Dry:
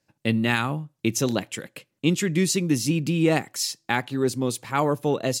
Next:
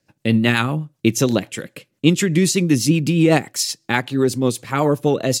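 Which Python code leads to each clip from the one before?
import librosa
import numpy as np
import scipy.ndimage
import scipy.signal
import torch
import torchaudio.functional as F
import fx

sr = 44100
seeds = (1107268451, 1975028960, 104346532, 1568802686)

y = fx.rotary(x, sr, hz=8.0)
y = F.gain(torch.from_numpy(y), 8.0).numpy()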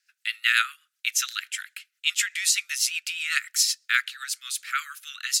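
y = scipy.signal.sosfilt(scipy.signal.butter(16, 1300.0, 'highpass', fs=sr, output='sos'), x)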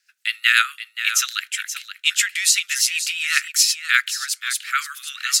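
y = x + 10.0 ** (-11.0 / 20.0) * np.pad(x, (int(527 * sr / 1000.0), 0))[:len(x)]
y = F.gain(torch.from_numpy(y), 5.5).numpy()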